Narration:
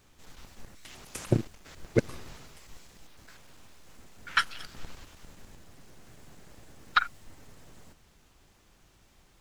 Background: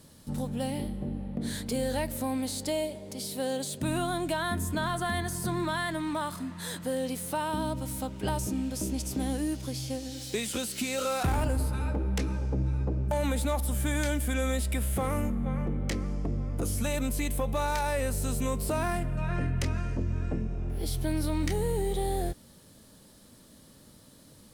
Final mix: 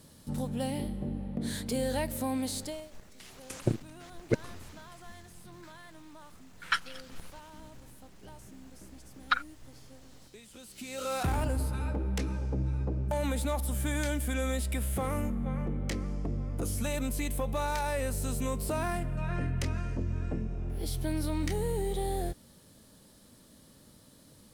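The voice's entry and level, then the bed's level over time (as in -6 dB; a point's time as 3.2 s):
2.35 s, -3.5 dB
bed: 2.58 s -1 dB
2.92 s -20.5 dB
10.5 s -20.5 dB
11.14 s -2.5 dB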